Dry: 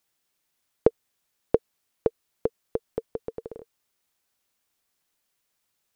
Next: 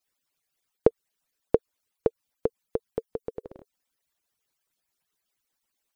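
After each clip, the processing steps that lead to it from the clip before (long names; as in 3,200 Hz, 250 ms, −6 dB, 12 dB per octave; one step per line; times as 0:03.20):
harmonic-percussive split with one part muted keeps percussive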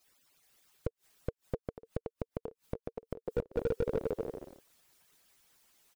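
bouncing-ball delay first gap 420 ms, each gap 0.6×, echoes 5
gate with flip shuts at −20 dBFS, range −31 dB
slew-rate limiting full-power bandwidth 6.2 Hz
level +11 dB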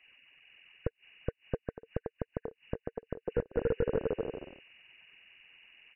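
hearing-aid frequency compression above 1,500 Hz 4 to 1
level +2 dB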